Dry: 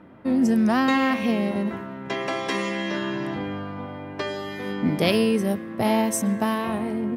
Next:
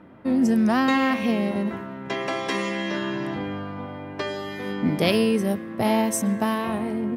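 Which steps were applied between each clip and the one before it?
nothing audible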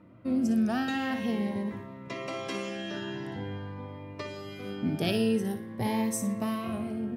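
bell 110 Hz +11.5 dB 0.31 oct; on a send: flutter echo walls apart 10 m, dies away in 0.32 s; on the sum: cascading phaser rising 0.47 Hz; gain -7 dB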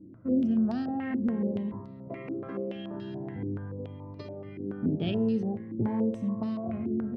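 tilt shelf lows +9.5 dB, about 690 Hz; stepped low-pass 7 Hz 340–4500 Hz; gain -7.5 dB

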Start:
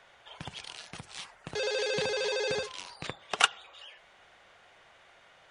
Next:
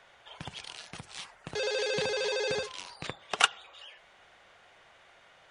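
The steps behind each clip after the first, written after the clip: nothing audible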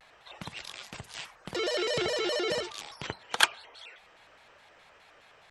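shaped vibrato square 4.8 Hz, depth 250 cents; gain +1 dB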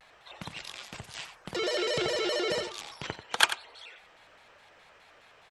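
echo 90 ms -11.5 dB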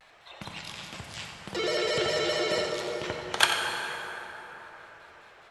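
plate-style reverb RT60 4.4 s, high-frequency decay 0.45×, DRR 0.5 dB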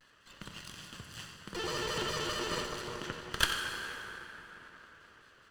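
minimum comb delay 0.65 ms; gain -5.5 dB

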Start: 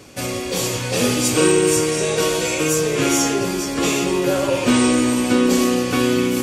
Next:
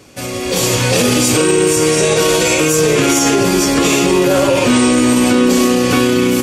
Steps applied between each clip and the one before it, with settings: limiter -14.5 dBFS, peak gain reduction 11 dB; AGC gain up to 12 dB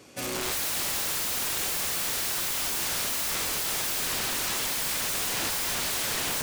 low shelf 94 Hz -12 dB; wrapped overs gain 16.5 dB; gain -8 dB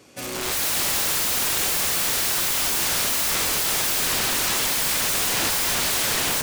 AGC gain up to 6.5 dB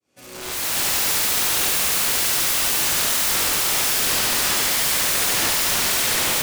opening faded in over 0.82 s; on a send: thinning echo 71 ms, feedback 79%, high-pass 420 Hz, level -5 dB

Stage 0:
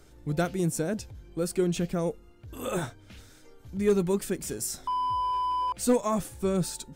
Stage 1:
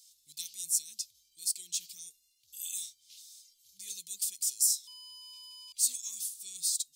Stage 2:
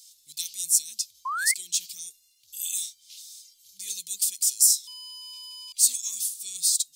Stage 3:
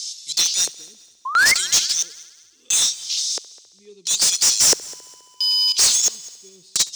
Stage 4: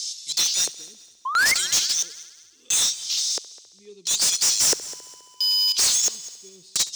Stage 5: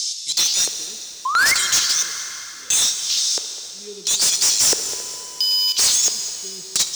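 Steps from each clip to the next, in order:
inverse Chebyshev high-pass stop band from 1600 Hz, stop band 50 dB; gain +7 dB
low shelf 400 Hz -5 dB; painted sound rise, 1.25–1.54, 1000–2200 Hz -37 dBFS; gain +8 dB
LFO low-pass square 0.74 Hz 430–5900 Hz; overdrive pedal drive 29 dB, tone 7000 Hz, clips at -3 dBFS; multi-head echo 68 ms, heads first and third, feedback 51%, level -22 dB; gain -3 dB
soft clip -16 dBFS, distortion -14 dB
in parallel at +2.5 dB: compressor, threshold -30 dBFS, peak gain reduction 11 dB; on the sum: plate-style reverb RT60 3.9 s, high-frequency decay 0.85×, DRR 8 dB

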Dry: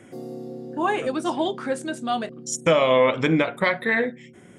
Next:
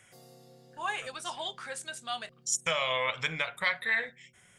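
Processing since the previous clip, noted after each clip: passive tone stack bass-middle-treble 10-0-10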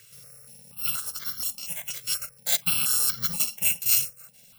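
FFT order left unsorted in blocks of 128 samples; step phaser 4.2 Hz 220–2600 Hz; gain +7.5 dB

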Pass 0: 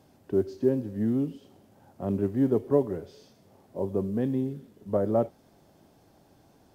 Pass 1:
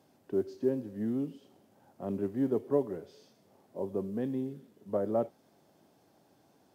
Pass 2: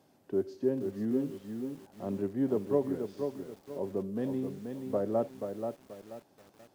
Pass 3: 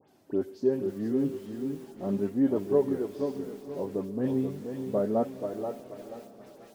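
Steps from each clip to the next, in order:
Bessel high-pass 170 Hz, order 2; gain -4.5 dB
lo-fi delay 0.482 s, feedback 35%, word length 9-bit, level -6 dB
dispersion highs, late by 87 ms, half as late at 2600 Hz; flange 0.35 Hz, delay 2.1 ms, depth 5.8 ms, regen +54%; diffused feedback echo 0.488 s, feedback 47%, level -15 dB; gain +7 dB

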